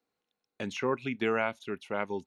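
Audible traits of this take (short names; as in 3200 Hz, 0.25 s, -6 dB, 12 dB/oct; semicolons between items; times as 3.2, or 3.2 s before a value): noise floor -88 dBFS; spectral tilt -3.5 dB/oct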